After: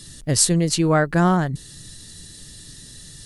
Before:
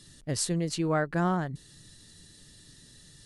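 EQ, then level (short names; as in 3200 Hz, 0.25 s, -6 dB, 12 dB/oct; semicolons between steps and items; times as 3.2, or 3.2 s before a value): low shelf 110 Hz +6 dB; high shelf 4800 Hz +7 dB; +8.5 dB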